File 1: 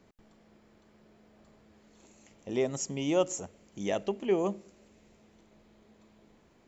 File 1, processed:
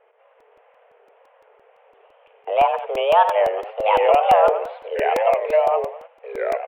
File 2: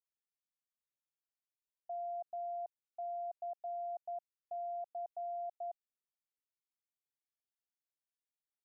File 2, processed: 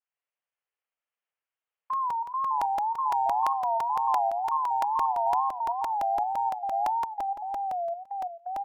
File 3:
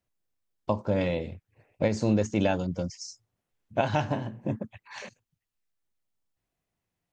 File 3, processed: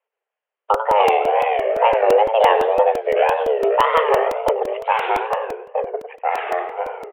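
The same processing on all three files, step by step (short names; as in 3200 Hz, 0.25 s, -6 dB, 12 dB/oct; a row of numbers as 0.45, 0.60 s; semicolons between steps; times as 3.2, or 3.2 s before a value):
in parallel at +3 dB: limiter -19 dBFS; on the sum: echoes that change speed 0.124 s, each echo -4 st, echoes 2; HPF 140 Hz 24 dB/oct; feedback echo 96 ms, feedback 37%, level -9.5 dB; gate -44 dBFS, range -8 dB; frequency shift +300 Hz; wow and flutter 140 cents; steep low-pass 3100 Hz 72 dB/oct; crackling interface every 0.17 s, samples 128, repeat, from 0.4; gain +5 dB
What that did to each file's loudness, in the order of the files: +13.0, +15.0, +11.0 LU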